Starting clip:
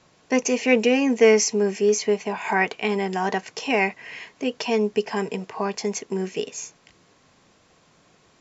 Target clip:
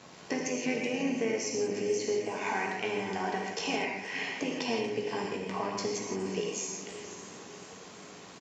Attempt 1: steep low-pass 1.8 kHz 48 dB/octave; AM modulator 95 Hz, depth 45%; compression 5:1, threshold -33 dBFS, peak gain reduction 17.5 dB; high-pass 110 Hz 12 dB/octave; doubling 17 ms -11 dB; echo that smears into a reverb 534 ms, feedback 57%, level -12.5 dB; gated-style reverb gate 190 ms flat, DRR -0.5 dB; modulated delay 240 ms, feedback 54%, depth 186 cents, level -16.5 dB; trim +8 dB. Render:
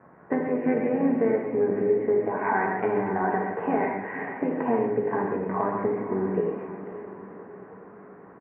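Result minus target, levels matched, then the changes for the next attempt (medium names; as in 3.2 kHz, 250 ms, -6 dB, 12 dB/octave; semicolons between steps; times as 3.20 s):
compression: peak gain reduction -8 dB; 2 kHz band -5.0 dB
change: compression 5:1, threshold -42.5 dBFS, peak gain reduction 25.5 dB; remove: steep low-pass 1.8 kHz 48 dB/octave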